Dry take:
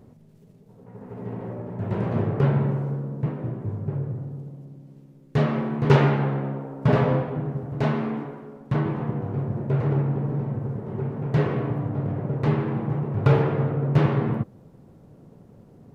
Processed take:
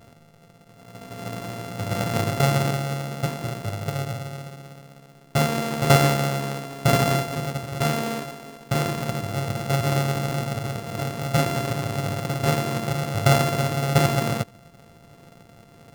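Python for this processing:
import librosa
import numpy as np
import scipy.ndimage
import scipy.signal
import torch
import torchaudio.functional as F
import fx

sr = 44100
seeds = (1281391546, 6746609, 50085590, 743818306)

y = np.r_[np.sort(x[:len(x) // 64 * 64].reshape(-1, 64), axis=1).ravel(), x[len(x) // 64 * 64:]]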